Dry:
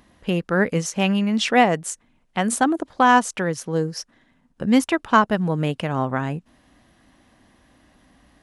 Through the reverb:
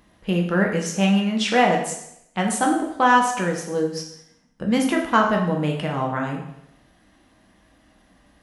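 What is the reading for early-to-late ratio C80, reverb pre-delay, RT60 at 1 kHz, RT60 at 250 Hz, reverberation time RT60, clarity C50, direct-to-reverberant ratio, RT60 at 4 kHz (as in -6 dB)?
8.5 dB, 4 ms, 0.75 s, 0.75 s, 0.80 s, 6.0 dB, 0.5 dB, 0.70 s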